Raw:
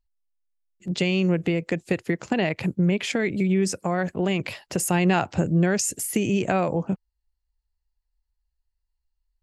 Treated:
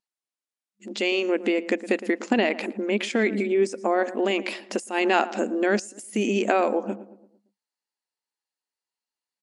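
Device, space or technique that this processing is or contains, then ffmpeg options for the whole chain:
de-esser from a sidechain: -filter_complex "[0:a]asettb=1/sr,asplit=3[link_01][link_02][link_03];[link_01]atrim=end=3.464[link_04];[link_02]atrim=start=3.46:end=4.03,asetpts=PTS-STARTPTS,afade=type=in:duration=0.004:curve=qsin,afade=type=out:start_time=0.566:duration=0.004:curve=qsin,tiltshelf=frequency=970:gain=4[link_05];[link_03]atrim=start=4.026[link_06];[link_04][link_05]acrossfade=duration=0.004:curve1=hsin:curve2=qsin[link_07];[link_07][link_06]acrossfade=duration=0.004:curve1=qsin:curve2=hsin,asplit=2[link_08][link_09];[link_09]adelay=113,lowpass=frequency=1300:poles=1,volume=-14dB,asplit=2[link_10][link_11];[link_11]adelay=113,lowpass=frequency=1300:poles=1,volume=0.48,asplit=2[link_12][link_13];[link_13]adelay=113,lowpass=frequency=1300:poles=1,volume=0.48,asplit=2[link_14][link_15];[link_15]adelay=113,lowpass=frequency=1300:poles=1,volume=0.48,asplit=2[link_16][link_17];[link_17]adelay=113,lowpass=frequency=1300:poles=1,volume=0.48[link_18];[link_08][link_10][link_12][link_14][link_16][link_18]amix=inputs=6:normalize=0,afftfilt=real='re*between(b*sr/4096,200,11000)':imag='im*between(b*sr/4096,200,11000)':win_size=4096:overlap=0.75,asplit=2[link_19][link_20];[link_20]highpass=frequency=6900:width=0.5412,highpass=frequency=6900:width=1.3066,apad=whole_len=440597[link_21];[link_19][link_21]sidechaincompress=threshold=-40dB:ratio=10:attack=1.3:release=94,volume=2.5dB"

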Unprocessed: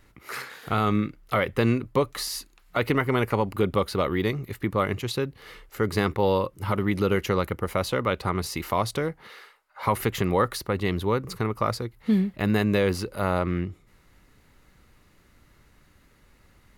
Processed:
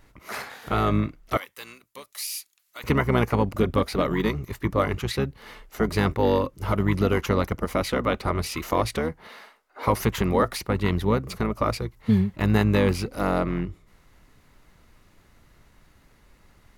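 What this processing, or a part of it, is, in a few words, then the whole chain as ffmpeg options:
octave pedal: -filter_complex "[0:a]asplit=2[link_01][link_02];[link_02]asetrate=22050,aresample=44100,atempo=2,volume=-4dB[link_03];[link_01][link_03]amix=inputs=2:normalize=0,asettb=1/sr,asplit=3[link_04][link_05][link_06];[link_04]atrim=end=1.374[link_07];[link_05]atrim=start=1.37:end=2.84,asetpts=PTS-STARTPTS,afade=type=in:duration=0.004:curve=qsin,afade=type=out:start_time=1.466:duration=0.004:curve=qsin,aderivative[link_08];[link_06]atrim=start=2.836[link_09];[link_07][link_08]acrossfade=duration=0.004:curve1=hsin:curve2=qsin[link_10];[link_10][link_09]acrossfade=duration=0.004:curve1=qsin:curve2=hsin"

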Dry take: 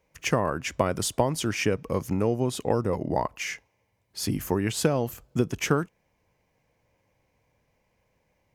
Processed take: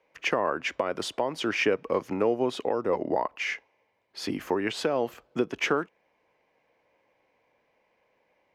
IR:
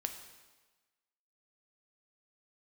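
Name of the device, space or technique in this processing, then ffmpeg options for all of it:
DJ mixer with the lows and highs turned down: -filter_complex "[0:a]acrossover=split=270 4200:gain=0.0891 1 0.1[link_01][link_02][link_03];[link_01][link_02][link_03]amix=inputs=3:normalize=0,alimiter=limit=-17.5dB:level=0:latency=1:release=243,volume=4dB"

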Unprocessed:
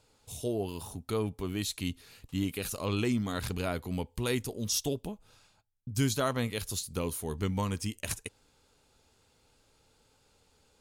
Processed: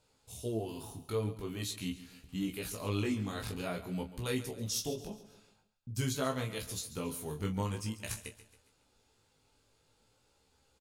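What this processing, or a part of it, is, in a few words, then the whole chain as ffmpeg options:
double-tracked vocal: -filter_complex "[0:a]asplit=2[link_01][link_02];[link_02]adelay=27,volume=-8dB[link_03];[link_01][link_03]amix=inputs=2:normalize=0,flanger=delay=15:depth=5.1:speed=0.47,aecho=1:1:138|276|414|552:0.178|0.08|0.036|0.0162,volume=-2dB"

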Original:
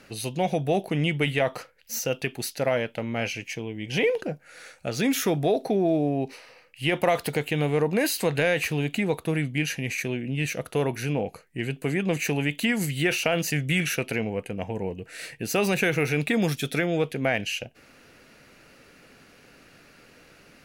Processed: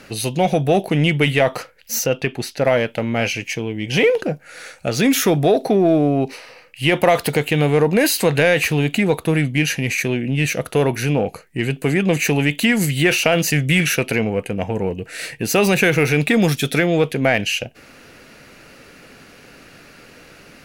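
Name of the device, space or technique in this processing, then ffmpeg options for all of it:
parallel distortion: -filter_complex "[0:a]asplit=2[link_01][link_02];[link_02]asoftclip=type=hard:threshold=-26dB,volume=-11.5dB[link_03];[link_01][link_03]amix=inputs=2:normalize=0,asettb=1/sr,asplit=3[link_04][link_05][link_06];[link_04]atrim=end=2.064[link_07];[link_05]atrim=start=2.06:end=2.65,asetpts=PTS-STARTPTS,afade=type=in:duration=0.004:curve=qsin,afade=type=out:start_time=0.586:duration=0.004:curve=qsin,aemphasis=mode=reproduction:type=50kf[link_08];[link_06]atrim=start=2.646[link_09];[link_07][link_08]acrossfade=duration=0.004:curve1=hsin:curve2=qsin[link_10];[link_10][link_09]acrossfade=duration=0.004:curve1=qsin:curve2=hsin,volume=7dB"

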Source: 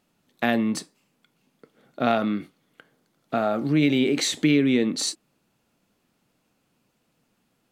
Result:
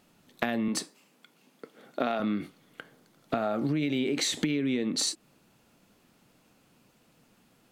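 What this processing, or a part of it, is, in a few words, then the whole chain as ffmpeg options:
serial compression, peaks first: -filter_complex "[0:a]asettb=1/sr,asplit=3[link_01][link_02][link_03];[link_01]atrim=end=0.684[link_04];[link_02]atrim=start=0.68:end=2.2,asetpts=PTS-STARTPTS,afade=type=in:duration=0.004:curve=qsin,afade=type=out:start_time=1.516:duration=0.004:curve=qsin,highpass=220[link_05];[link_03]atrim=start=2.196[link_06];[link_04][link_05]acrossfade=duration=0.004:curve1=hsin:curve2=qsin[link_07];[link_07][link_06]acrossfade=duration=0.004:curve1=qsin:curve2=hsin,acompressor=threshold=-27dB:ratio=6,acompressor=threshold=-35dB:ratio=2,volume=6.5dB"

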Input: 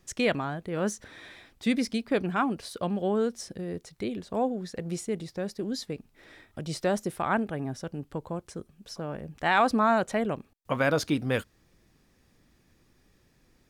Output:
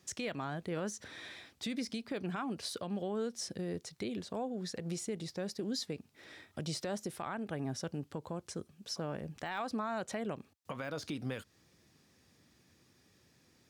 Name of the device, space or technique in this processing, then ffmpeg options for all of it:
broadcast voice chain: -af "highpass=frequency=75:width=0.5412,highpass=frequency=75:width=1.3066,deesser=0.8,acompressor=threshold=-30dB:ratio=5,equalizer=frequency=5300:width_type=o:width=1.7:gain=5.5,alimiter=level_in=1.5dB:limit=-24dB:level=0:latency=1:release=100,volume=-1.5dB,volume=-2.5dB"

